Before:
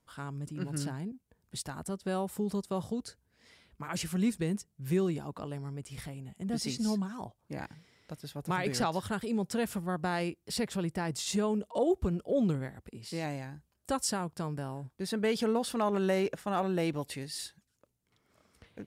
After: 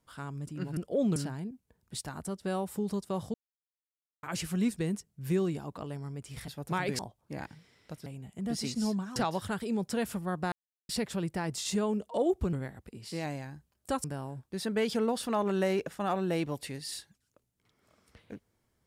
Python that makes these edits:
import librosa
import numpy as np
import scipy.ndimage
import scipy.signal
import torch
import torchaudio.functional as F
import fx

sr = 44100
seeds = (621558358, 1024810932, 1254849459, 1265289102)

y = fx.edit(x, sr, fx.silence(start_s=2.95, length_s=0.89),
    fx.swap(start_s=6.09, length_s=1.1, other_s=8.26, other_length_s=0.51),
    fx.silence(start_s=10.13, length_s=0.37),
    fx.move(start_s=12.14, length_s=0.39, to_s=0.77),
    fx.cut(start_s=14.04, length_s=0.47), tone=tone)